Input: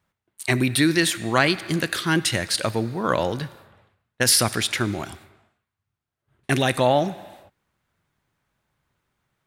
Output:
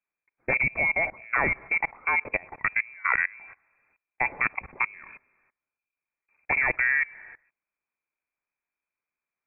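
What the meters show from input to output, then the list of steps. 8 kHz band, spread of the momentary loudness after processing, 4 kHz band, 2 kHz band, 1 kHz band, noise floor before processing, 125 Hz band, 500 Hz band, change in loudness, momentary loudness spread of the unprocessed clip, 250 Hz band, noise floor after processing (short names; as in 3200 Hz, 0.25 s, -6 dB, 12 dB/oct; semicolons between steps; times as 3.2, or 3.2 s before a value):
under -40 dB, 7 LU, under -40 dB, +2.5 dB, -5.0 dB, -84 dBFS, -18.0 dB, -13.0 dB, -4.0 dB, 14 LU, -20.0 dB, under -85 dBFS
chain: level quantiser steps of 23 dB; inverted band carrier 2500 Hz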